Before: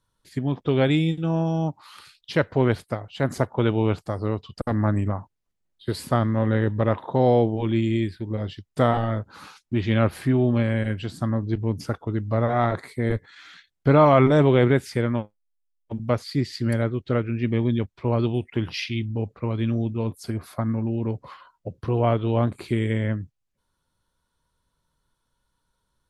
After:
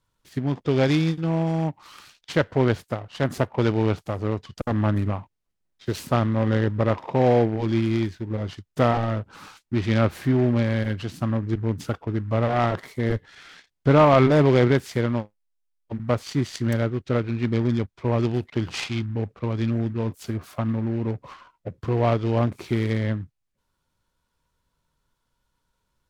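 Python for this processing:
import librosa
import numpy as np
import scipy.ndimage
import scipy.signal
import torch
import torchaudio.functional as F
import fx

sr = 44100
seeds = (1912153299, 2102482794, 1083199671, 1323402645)

y = fx.noise_mod_delay(x, sr, seeds[0], noise_hz=1300.0, depth_ms=0.032)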